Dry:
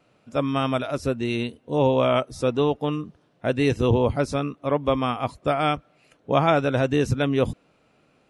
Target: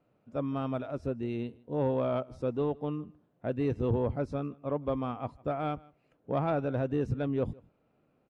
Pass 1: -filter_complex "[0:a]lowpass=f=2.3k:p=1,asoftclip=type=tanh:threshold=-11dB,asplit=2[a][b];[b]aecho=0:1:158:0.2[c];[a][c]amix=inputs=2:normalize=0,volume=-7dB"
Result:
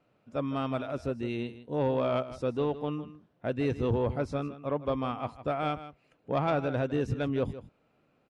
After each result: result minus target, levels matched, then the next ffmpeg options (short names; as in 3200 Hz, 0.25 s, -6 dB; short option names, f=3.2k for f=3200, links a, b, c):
echo-to-direct +10.5 dB; 2000 Hz band +4.5 dB
-filter_complex "[0:a]lowpass=f=2.3k:p=1,asoftclip=type=tanh:threshold=-11dB,asplit=2[a][b];[b]aecho=0:1:158:0.0596[c];[a][c]amix=inputs=2:normalize=0,volume=-7dB"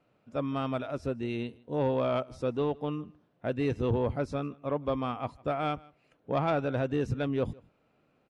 2000 Hz band +4.5 dB
-filter_complex "[0:a]lowpass=f=790:p=1,asoftclip=type=tanh:threshold=-11dB,asplit=2[a][b];[b]aecho=0:1:158:0.0596[c];[a][c]amix=inputs=2:normalize=0,volume=-7dB"